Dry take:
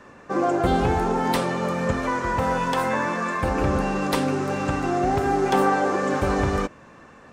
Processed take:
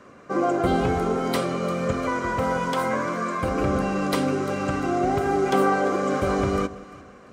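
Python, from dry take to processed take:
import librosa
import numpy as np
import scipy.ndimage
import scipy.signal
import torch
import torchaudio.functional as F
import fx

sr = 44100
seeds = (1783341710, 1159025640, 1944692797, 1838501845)

y = fx.notch_comb(x, sr, f0_hz=880.0)
y = fx.echo_alternate(y, sr, ms=173, hz=890.0, feedback_pct=56, wet_db=-13.5)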